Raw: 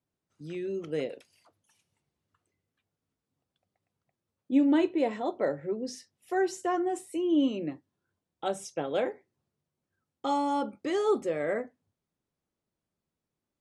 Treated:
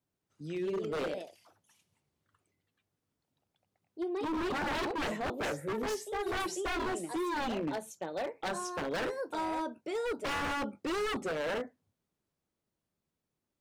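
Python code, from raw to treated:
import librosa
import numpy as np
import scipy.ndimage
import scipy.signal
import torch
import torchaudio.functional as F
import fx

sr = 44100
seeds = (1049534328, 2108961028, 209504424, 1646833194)

y = fx.echo_pitch(x, sr, ms=199, semitones=2, count=2, db_per_echo=-6.0)
y = 10.0 ** (-28.5 / 20.0) * (np.abs((y / 10.0 ** (-28.5 / 20.0) + 3.0) % 4.0 - 2.0) - 1.0)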